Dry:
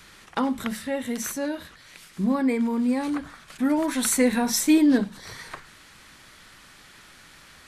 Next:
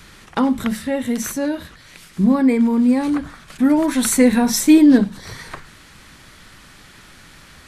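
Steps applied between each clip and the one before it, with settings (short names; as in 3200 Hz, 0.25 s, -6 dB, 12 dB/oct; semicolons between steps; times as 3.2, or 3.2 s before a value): low shelf 300 Hz +7.5 dB; gain +4 dB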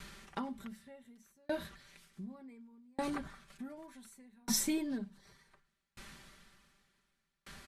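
comb 5.1 ms, depth 64%; compressor 2:1, threshold -21 dBFS, peak gain reduction 7.5 dB; dB-ramp tremolo decaying 0.67 Hz, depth 39 dB; gain -7 dB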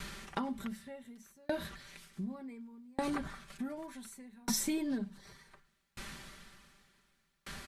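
compressor 3:1, threshold -39 dBFS, peak gain reduction 9 dB; gain +6.5 dB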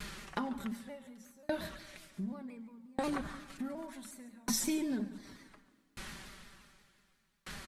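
echo 0.142 s -16.5 dB; plate-style reverb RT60 1.9 s, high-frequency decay 0.5×, DRR 15 dB; shaped vibrato saw down 5.6 Hz, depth 100 cents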